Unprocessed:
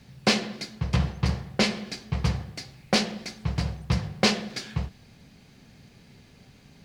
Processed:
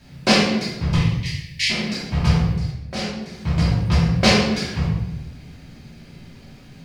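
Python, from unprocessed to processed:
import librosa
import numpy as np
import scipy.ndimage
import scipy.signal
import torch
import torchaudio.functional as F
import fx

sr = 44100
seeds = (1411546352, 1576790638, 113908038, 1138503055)

y = fx.steep_highpass(x, sr, hz=1800.0, slope=96, at=(0.95, 1.7))
y = fx.level_steps(y, sr, step_db=16, at=(2.52, 3.4))
y = fx.room_shoebox(y, sr, seeds[0], volume_m3=390.0, walls='mixed', distance_m=2.8)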